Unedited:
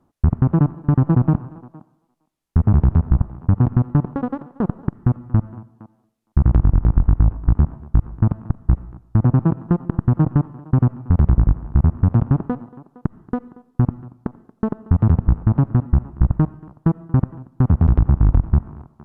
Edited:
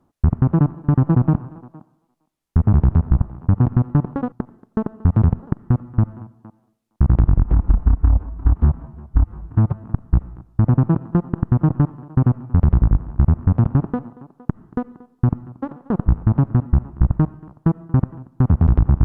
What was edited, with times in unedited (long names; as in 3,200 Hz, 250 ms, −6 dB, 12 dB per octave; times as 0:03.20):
0:04.32–0:04.76: swap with 0:14.18–0:15.26
0:06.80–0:08.40: time-stretch 1.5×